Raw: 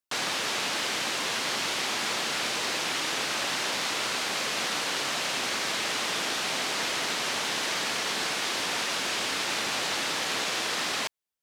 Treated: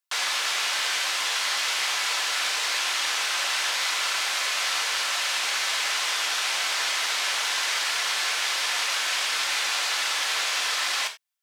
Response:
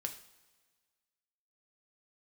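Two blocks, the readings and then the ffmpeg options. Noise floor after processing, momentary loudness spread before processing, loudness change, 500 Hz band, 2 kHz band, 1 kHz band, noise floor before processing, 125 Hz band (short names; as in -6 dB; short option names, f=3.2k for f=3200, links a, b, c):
-28 dBFS, 0 LU, +4.0 dB, -5.5 dB, +4.0 dB, +1.5 dB, -31 dBFS, under -25 dB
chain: -filter_complex "[0:a]highpass=930[a];[1:a]atrim=start_sample=2205,atrim=end_sample=4410[b];[a][b]afir=irnorm=-1:irlink=0,volume=5dB"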